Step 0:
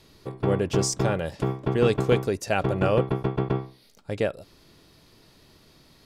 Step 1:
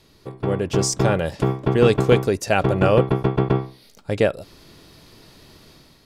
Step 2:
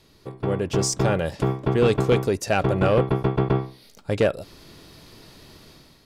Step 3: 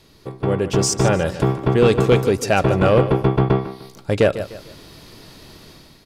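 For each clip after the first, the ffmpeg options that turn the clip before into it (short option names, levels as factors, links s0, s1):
-af "dynaudnorm=f=570:g=3:m=2.51"
-af "dynaudnorm=f=430:g=5:m=1.41,asoftclip=type=tanh:threshold=0.355,volume=0.841"
-af "aecho=1:1:150|300|450:0.224|0.0784|0.0274,volume=1.68"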